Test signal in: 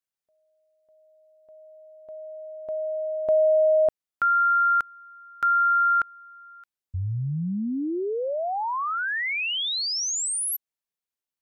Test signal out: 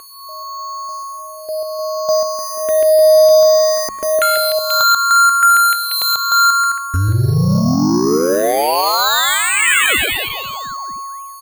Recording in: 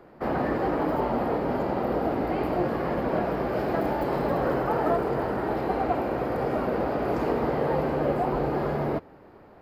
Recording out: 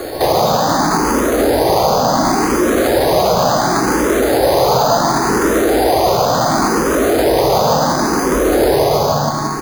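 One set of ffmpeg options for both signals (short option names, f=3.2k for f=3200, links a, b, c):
-filter_complex "[0:a]acompressor=threshold=-32dB:ratio=6:attack=0.38:release=43:knee=1:detection=peak,aeval=exprs='(mod(22.4*val(0)+1,2)-1)/22.4':c=same,aecho=1:1:140|301|486.2|699.1|943.9:0.631|0.398|0.251|0.158|0.1,asoftclip=type=tanh:threshold=-27.5dB,aeval=exprs='val(0)+0.00224*sin(2*PI*1100*n/s)':c=same,lowpass=f=3.2k:w=0.5412,lowpass=f=3.2k:w=1.3066,lowshelf=f=430:g=-5,bandreject=f=69.12:t=h:w=4,bandreject=f=138.24:t=h:w=4,bandreject=f=207.36:t=h:w=4,acrusher=samples=8:mix=1:aa=0.000001,alimiter=level_in=34dB:limit=-1dB:release=50:level=0:latency=1,asplit=2[a][b];[b]afreqshift=0.7[c];[a][c]amix=inputs=2:normalize=1,volume=-3dB"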